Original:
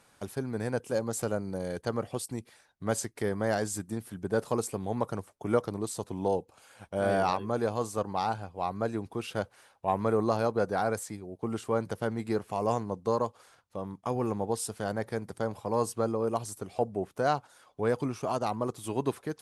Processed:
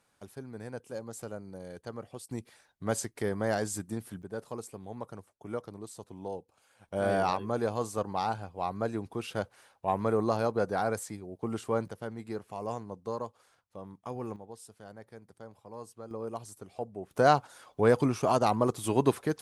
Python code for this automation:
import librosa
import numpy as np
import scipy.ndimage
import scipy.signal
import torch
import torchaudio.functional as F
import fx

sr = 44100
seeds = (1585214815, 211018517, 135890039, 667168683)

y = fx.gain(x, sr, db=fx.steps((0.0, -9.5), (2.31, -1.0), (4.22, -10.0), (6.88, -1.0), (11.88, -7.5), (14.36, -16.0), (16.11, -8.0), (17.11, 5.0)))